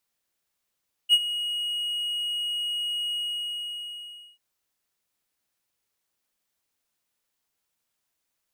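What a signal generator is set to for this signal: ADSR triangle 2.89 kHz, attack 43 ms, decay 49 ms, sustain -14 dB, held 2.04 s, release 1250 ms -10.5 dBFS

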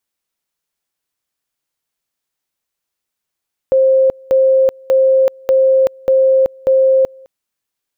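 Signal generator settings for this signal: two-level tone 529 Hz -7.5 dBFS, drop 28.5 dB, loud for 0.38 s, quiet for 0.21 s, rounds 6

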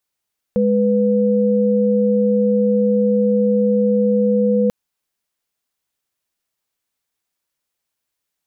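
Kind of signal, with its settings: chord G#3/B4 sine, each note -15.5 dBFS 4.14 s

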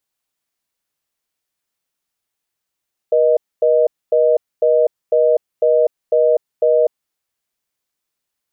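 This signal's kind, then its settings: call progress tone reorder tone, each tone -13 dBFS 3.89 s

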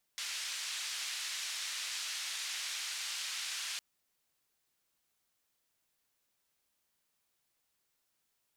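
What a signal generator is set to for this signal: noise band 1.9–6 kHz, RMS -39.5 dBFS 3.61 s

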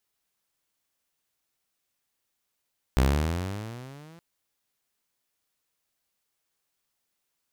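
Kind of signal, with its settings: gliding synth tone saw, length 1.22 s, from 62.6 Hz, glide +17.5 st, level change -30.5 dB, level -15 dB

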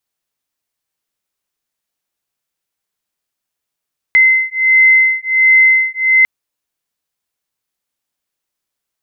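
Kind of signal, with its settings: beating tones 2.06 kHz, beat 1.4 Hz, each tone -10.5 dBFS 2.10 s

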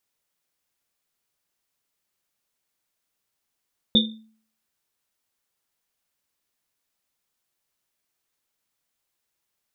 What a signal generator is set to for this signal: Risset drum, pitch 220 Hz, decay 0.51 s, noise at 3.6 kHz, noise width 170 Hz, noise 55%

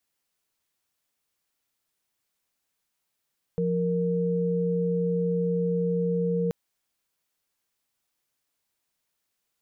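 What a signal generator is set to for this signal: chord F3/A#4 sine, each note -25.5 dBFS 2.93 s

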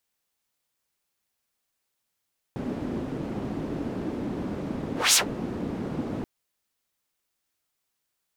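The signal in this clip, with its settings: whoosh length 3.68 s, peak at 2.59 s, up 0.21 s, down 0.11 s, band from 260 Hz, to 7.5 kHz, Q 1.6, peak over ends 14 dB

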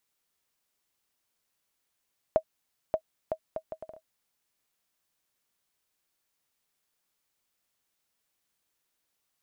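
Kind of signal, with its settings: bouncing ball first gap 0.58 s, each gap 0.65, 636 Hz, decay 73 ms -12 dBFS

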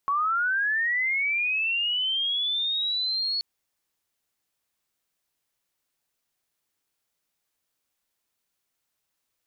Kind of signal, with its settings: sweep linear 1.1 kHz -> 4.4 kHz -21.5 dBFS -> -24.5 dBFS 3.33 s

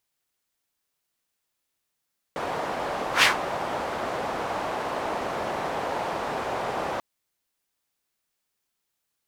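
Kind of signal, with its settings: whoosh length 4.64 s, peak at 0.87 s, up 0.11 s, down 0.15 s, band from 750 Hz, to 2.3 kHz, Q 1.4, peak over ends 13.5 dB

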